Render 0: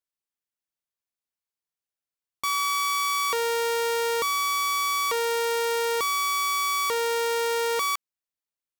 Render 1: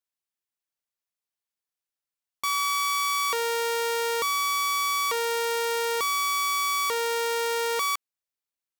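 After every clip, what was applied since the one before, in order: low shelf 440 Hz -4.5 dB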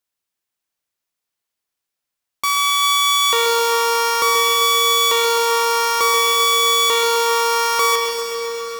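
reverb RT60 4.9 s, pre-delay 35 ms, DRR 4 dB; lo-fi delay 0.131 s, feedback 80%, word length 8-bit, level -9 dB; gain +8 dB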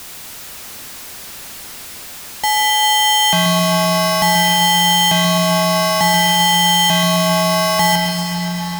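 zero-crossing step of -27.5 dBFS; frequency shift -290 Hz; gain +1.5 dB

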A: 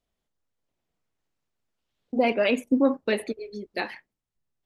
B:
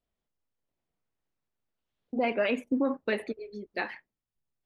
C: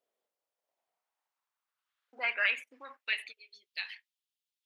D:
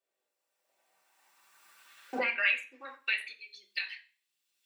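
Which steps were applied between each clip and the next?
LPF 3300 Hz 6 dB/oct; limiter -15 dBFS, peak gain reduction 5 dB; dynamic EQ 1600 Hz, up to +5 dB, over -40 dBFS, Q 0.91; gain -4 dB
high-pass sweep 480 Hz -> 3200 Hz, 0.14–3.6
recorder AGC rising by 18 dB/s; reverb RT60 0.35 s, pre-delay 3 ms, DRR -2 dB; gain -3 dB

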